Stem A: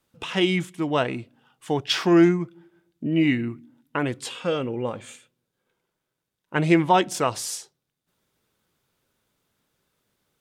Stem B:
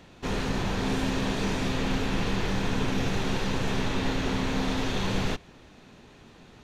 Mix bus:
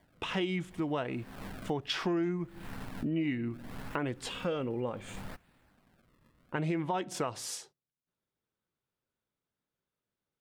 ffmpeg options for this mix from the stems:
-filter_complex "[0:a]agate=range=0.178:threshold=0.00398:ratio=16:detection=peak,highshelf=f=4000:g=-8.5,alimiter=limit=0.237:level=0:latency=1:release=117,volume=0.891,asplit=2[s0][s1];[1:a]acrusher=samples=33:mix=1:aa=0.000001:lfo=1:lforange=52.8:lforate=0.68,equalizer=f=400:t=o:w=0.67:g=-7,equalizer=f=1600:t=o:w=0.67:g=4,equalizer=f=6300:t=o:w=0.67:g=-5,volume=0.188[s2];[s1]apad=whole_len=292787[s3];[s2][s3]sidechaincompress=threshold=0.00562:ratio=5:attack=16:release=187[s4];[s0][s4]amix=inputs=2:normalize=0,acompressor=threshold=0.0251:ratio=3"

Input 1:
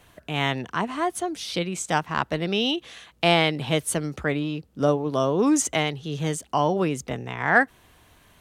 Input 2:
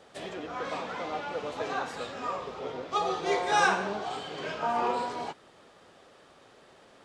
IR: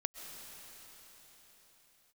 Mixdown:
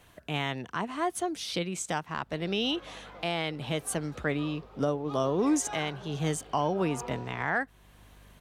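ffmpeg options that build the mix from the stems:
-filter_complex "[0:a]volume=0.708[s0];[1:a]aeval=exprs='val(0)+0.00794*(sin(2*PI*50*n/s)+sin(2*PI*2*50*n/s)/2+sin(2*PI*3*50*n/s)/3+sin(2*PI*4*50*n/s)/4+sin(2*PI*5*50*n/s)/5)':c=same,highshelf=f=5600:g=-10.5,adelay=2150,volume=0.237[s1];[s0][s1]amix=inputs=2:normalize=0,alimiter=limit=0.141:level=0:latency=1:release=461"

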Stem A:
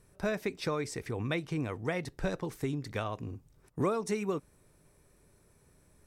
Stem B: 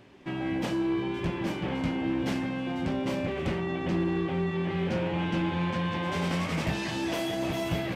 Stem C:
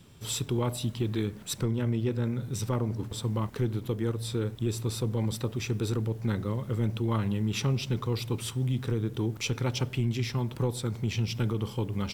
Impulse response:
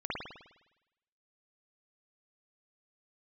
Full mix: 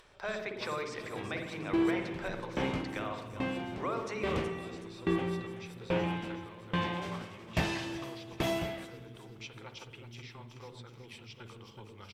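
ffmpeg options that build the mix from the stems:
-filter_complex "[0:a]volume=1.12,asplit=3[s0][s1][s2];[s1]volume=0.224[s3];[s2]volume=0.133[s4];[1:a]aeval=exprs='val(0)*pow(10,-31*if(lt(mod(1.2*n/s,1),2*abs(1.2)/1000),1-mod(1.2*n/s,1)/(2*abs(1.2)/1000),(mod(1.2*n/s,1)-2*abs(1.2)/1000)/(1-2*abs(1.2)/1000))/20)':c=same,adelay=900,volume=1.33,asplit=3[s5][s6][s7];[s6]volume=0.178[s8];[s7]volume=0.1[s9];[2:a]volume=0.251,asplit=3[s10][s11][s12];[s11]volume=0.158[s13];[s12]volume=0.299[s14];[s0][s10]amix=inputs=2:normalize=0,highpass=580,lowpass=4500,alimiter=level_in=1.26:limit=0.0631:level=0:latency=1:release=285,volume=0.794,volume=1[s15];[3:a]atrim=start_sample=2205[s16];[s3][s8][s13]amix=inputs=3:normalize=0[s17];[s17][s16]afir=irnorm=-1:irlink=0[s18];[s4][s9][s14]amix=inputs=3:normalize=0,aecho=0:1:373|746|1119|1492|1865|2238|2611:1|0.49|0.24|0.118|0.0576|0.0282|0.0138[s19];[s5][s15][s18][s19]amix=inputs=4:normalize=0,equalizer=f=150:t=o:w=2:g=-4,acompressor=mode=upward:threshold=0.00224:ratio=2.5"

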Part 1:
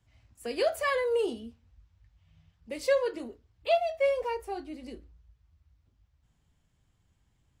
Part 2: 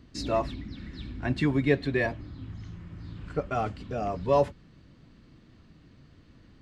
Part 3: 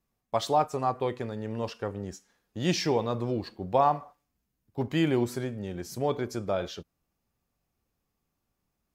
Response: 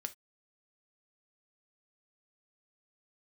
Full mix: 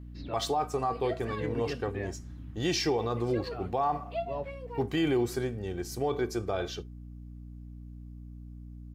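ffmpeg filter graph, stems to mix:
-filter_complex "[0:a]lowpass=f=3700:p=1,aecho=1:1:4.4:0.65,adelay=450,volume=0.224[s0];[1:a]lowpass=f=3800:w=0.5412,lowpass=f=3800:w=1.3066,volume=0.335[s1];[2:a]aecho=1:1:2.6:0.52,volume=0.631,asplit=3[s2][s3][s4];[s3]volume=0.708[s5];[s4]apad=whole_len=291525[s6];[s1][s6]sidechaincompress=threshold=0.0158:ratio=8:attack=16:release=645[s7];[3:a]atrim=start_sample=2205[s8];[s5][s8]afir=irnorm=-1:irlink=0[s9];[s0][s7][s2][s9]amix=inputs=4:normalize=0,aeval=exprs='val(0)+0.00708*(sin(2*PI*60*n/s)+sin(2*PI*2*60*n/s)/2+sin(2*PI*3*60*n/s)/3+sin(2*PI*4*60*n/s)/4+sin(2*PI*5*60*n/s)/5)':c=same,alimiter=limit=0.1:level=0:latency=1:release=25"

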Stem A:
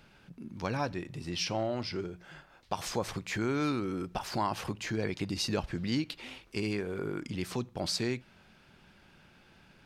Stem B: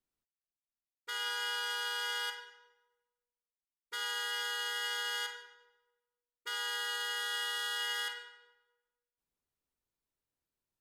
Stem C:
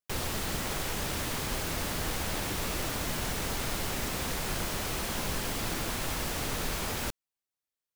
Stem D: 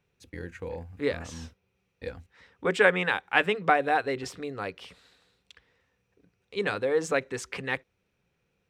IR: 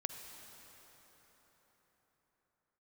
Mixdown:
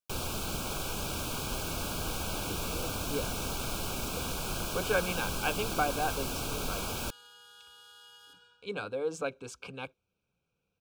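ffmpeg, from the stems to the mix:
-filter_complex "[1:a]acompressor=threshold=0.00891:ratio=6,adelay=250,volume=0.335[s0];[2:a]volume=0.794[s1];[3:a]bandreject=f=380:w=12,adelay=2100,volume=0.447[s2];[s0][s1][s2]amix=inputs=3:normalize=0,asuperstop=centerf=1900:order=12:qfactor=3.2"

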